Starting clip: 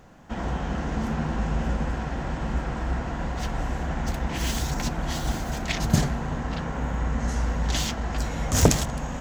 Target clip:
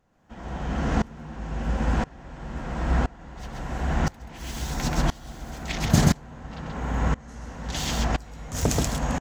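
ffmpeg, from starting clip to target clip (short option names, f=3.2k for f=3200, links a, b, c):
-filter_complex "[0:a]asplit=2[a][b];[b]aecho=0:1:131:0.562[c];[a][c]amix=inputs=2:normalize=0,aeval=exprs='val(0)*pow(10,-25*if(lt(mod(-0.98*n/s,1),2*abs(-0.98)/1000),1-mod(-0.98*n/s,1)/(2*abs(-0.98)/1000),(mod(-0.98*n/s,1)-2*abs(-0.98)/1000)/(1-2*abs(-0.98)/1000))/20)':c=same,volume=6dB"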